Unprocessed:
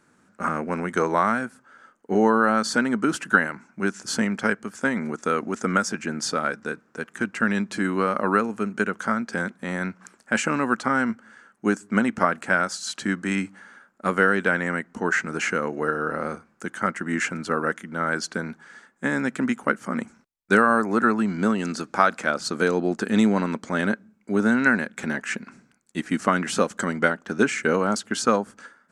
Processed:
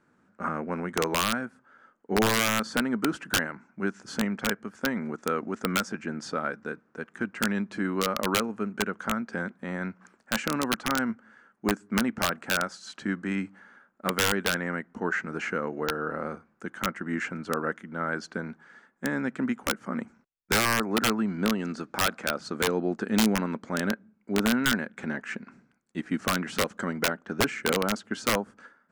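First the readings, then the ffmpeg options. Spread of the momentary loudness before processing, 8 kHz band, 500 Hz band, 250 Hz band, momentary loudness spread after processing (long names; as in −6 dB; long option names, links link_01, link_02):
10 LU, 0.0 dB, −5.5 dB, −5.0 dB, 10 LU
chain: -af "aemphasis=mode=reproduction:type=75kf,aeval=exprs='(mod(3.55*val(0)+1,2)-1)/3.55':channel_layout=same,volume=-4dB"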